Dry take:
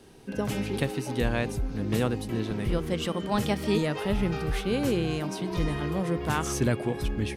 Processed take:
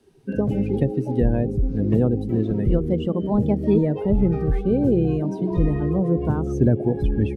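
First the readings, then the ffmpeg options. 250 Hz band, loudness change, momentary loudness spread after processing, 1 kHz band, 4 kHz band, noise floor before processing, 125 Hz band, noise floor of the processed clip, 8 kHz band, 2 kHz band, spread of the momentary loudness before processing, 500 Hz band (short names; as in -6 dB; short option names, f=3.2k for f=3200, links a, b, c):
+8.5 dB, +7.0 dB, 4 LU, -2.0 dB, under -10 dB, -37 dBFS, +8.5 dB, -31 dBFS, under -15 dB, n/a, 4 LU, +6.5 dB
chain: -filter_complex "[0:a]acrossover=split=570[a][b];[b]acompressor=threshold=-44dB:ratio=6[c];[a][c]amix=inputs=2:normalize=0,afftdn=nr=19:nf=-38,volume=8.5dB"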